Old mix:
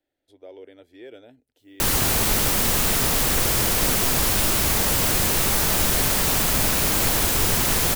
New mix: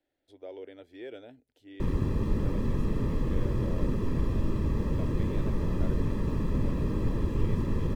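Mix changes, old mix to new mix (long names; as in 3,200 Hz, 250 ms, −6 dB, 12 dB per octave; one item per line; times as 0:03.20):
background: add moving average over 60 samples
master: add high-shelf EQ 7,200 Hz −9.5 dB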